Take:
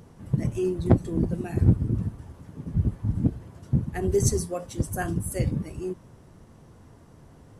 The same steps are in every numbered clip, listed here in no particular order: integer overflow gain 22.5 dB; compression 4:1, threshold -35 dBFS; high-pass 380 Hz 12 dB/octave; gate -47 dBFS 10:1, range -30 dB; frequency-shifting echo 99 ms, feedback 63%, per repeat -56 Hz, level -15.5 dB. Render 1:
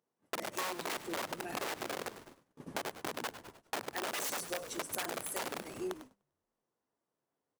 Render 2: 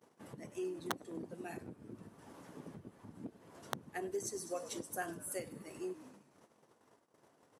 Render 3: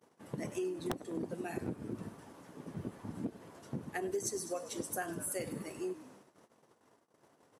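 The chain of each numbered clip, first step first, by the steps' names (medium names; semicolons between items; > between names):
integer overflow > high-pass > frequency-shifting echo > compression > gate; gate > frequency-shifting echo > compression > integer overflow > high-pass; frequency-shifting echo > gate > high-pass > compression > integer overflow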